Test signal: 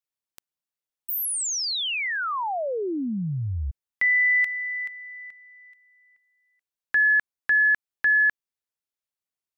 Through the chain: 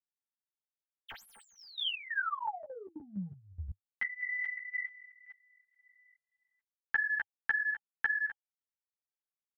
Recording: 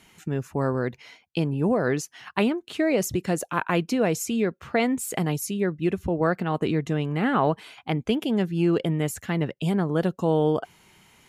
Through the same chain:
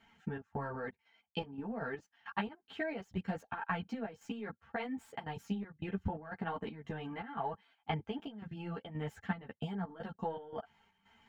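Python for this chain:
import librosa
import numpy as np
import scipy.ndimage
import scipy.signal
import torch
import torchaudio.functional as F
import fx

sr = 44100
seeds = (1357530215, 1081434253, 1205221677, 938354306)

y = scipy.ndimage.median_filter(x, 3, mode='constant')
y = fx.high_shelf(y, sr, hz=4200.0, db=-9.5)
y = y + 0.67 * np.pad(y, (int(4.4 * sr / 1000.0), 0))[:len(y)]
y = fx.level_steps(y, sr, step_db=15)
y = fx.transient(y, sr, attack_db=7, sustain_db=-3)
y = fx.small_body(y, sr, hz=(820.0, 3100.0), ring_ms=45, db=14)
y = fx.chopper(y, sr, hz=1.9, depth_pct=65, duty_pct=70)
y = fx.graphic_eq_15(y, sr, hz=(100, 400, 1600, 10000), db=(8, -3, 8, -9))
y = fx.ensemble(y, sr)
y = y * librosa.db_to_amplitude(-7.0)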